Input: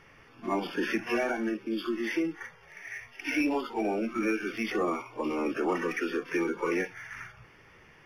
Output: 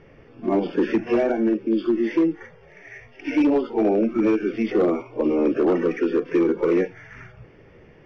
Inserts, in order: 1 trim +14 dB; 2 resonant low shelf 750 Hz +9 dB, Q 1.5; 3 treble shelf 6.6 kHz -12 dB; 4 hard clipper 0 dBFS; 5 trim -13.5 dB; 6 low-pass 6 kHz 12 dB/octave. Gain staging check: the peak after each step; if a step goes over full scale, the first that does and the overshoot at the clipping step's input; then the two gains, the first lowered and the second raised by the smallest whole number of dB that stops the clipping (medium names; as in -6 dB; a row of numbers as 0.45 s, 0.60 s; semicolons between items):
-3.0 dBFS, +6.0 dBFS, +6.0 dBFS, 0.0 dBFS, -13.5 dBFS, -13.5 dBFS; step 2, 6.0 dB; step 1 +8 dB, step 5 -7.5 dB